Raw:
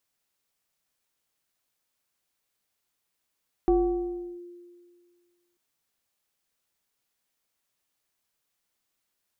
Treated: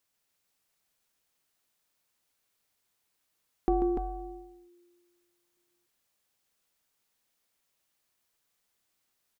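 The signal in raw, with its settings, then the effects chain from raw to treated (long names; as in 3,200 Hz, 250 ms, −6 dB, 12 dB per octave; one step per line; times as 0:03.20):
two-operator FM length 1.89 s, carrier 350 Hz, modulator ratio 1.13, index 0.6, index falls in 0.73 s linear, decay 1.89 s, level −16.5 dB
dynamic equaliser 350 Hz, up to −5 dB, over −34 dBFS
on a send: multi-tap delay 47/140/293 ms −17/−7.5/−5 dB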